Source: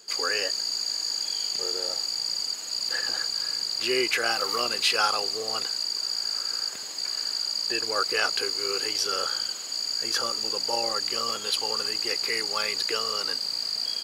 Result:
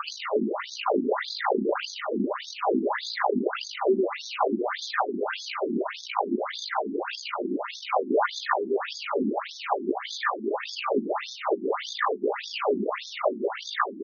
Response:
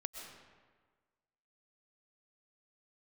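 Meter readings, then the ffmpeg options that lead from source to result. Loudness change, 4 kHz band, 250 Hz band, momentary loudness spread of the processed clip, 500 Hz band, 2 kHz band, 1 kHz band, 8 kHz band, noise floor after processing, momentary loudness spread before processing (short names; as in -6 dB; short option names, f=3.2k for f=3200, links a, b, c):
-2.5 dB, -12.5 dB, +12.5 dB, 5 LU, +7.5 dB, -1.5 dB, +6.0 dB, -15.5 dB, -41 dBFS, 4 LU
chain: -filter_complex "[0:a]acrusher=samples=22:mix=1:aa=0.000001:lfo=1:lforange=13.2:lforate=0.56,highshelf=f=2.6k:g=-10,asoftclip=type=tanh:threshold=-17dB,acompressor=mode=upward:threshold=-43dB:ratio=2.5,highpass=f=200:p=1,highshelf=f=9.7k:g=10.5,asplit=8[a][b][c][d][e][f][g][h];[b]adelay=143,afreqshift=90,volume=-12.5dB[i];[c]adelay=286,afreqshift=180,volume=-16.8dB[j];[d]adelay=429,afreqshift=270,volume=-21.1dB[k];[e]adelay=572,afreqshift=360,volume=-25.4dB[l];[f]adelay=715,afreqshift=450,volume=-29.7dB[m];[g]adelay=858,afreqshift=540,volume=-34dB[n];[h]adelay=1001,afreqshift=630,volume=-38.3dB[o];[a][i][j][k][l][m][n][o]amix=inputs=8:normalize=0,acompressor=threshold=-44dB:ratio=10,aecho=1:1:5:0.32,alimiter=level_in=35.5dB:limit=-1dB:release=50:level=0:latency=1,afftfilt=real='re*between(b*sr/1024,260*pow(4800/260,0.5+0.5*sin(2*PI*1.7*pts/sr))/1.41,260*pow(4800/260,0.5+0.5*sin(2*PI*1.7*pts/sr))*1.41)':imag='im*between(b*sr/1024,260*pow(4800/260,0.5+0.5*sin(2*PI*1.7*pts/sr))/1.41,260*pow(4800/260,0.5+0.5*sin(2*PI*1.7*pts/sr))*1.41)':win_size=1024:overlap=0.75,volume=-8.5dB"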